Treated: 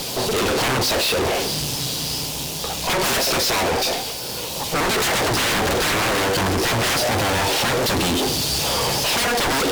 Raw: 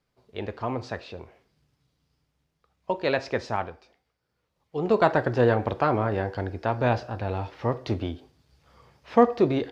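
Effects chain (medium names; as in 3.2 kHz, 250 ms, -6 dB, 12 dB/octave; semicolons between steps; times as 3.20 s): high-pass 260 Hz 6 dB/octave; treble shelf 3.1 kHz +11 dB; power-law waveshaper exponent 0.7; high-order bell 1.6 kHz -11.5 dB 1.1 oct; sine folder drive 20 dB, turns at -6.5 dBFS; valve stage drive 28 dB, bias 0.75; trim +8.5 dB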